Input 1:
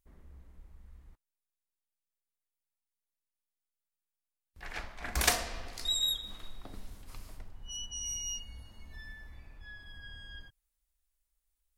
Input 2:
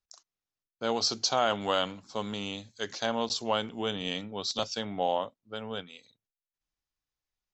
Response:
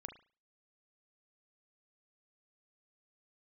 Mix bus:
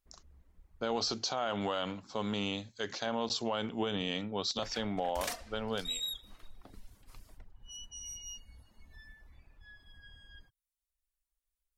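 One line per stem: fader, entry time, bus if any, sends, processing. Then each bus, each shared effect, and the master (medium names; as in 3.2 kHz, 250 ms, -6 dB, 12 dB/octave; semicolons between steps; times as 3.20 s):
-5.5 dB, 0.00 s, no send, reverb removal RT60 0.71 s
+2.0 dB, 0.00 s, no send, tone controls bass 0 dB, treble -6 dB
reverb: none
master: peak limiter -23 dBFS, peak gain reduction 11 dB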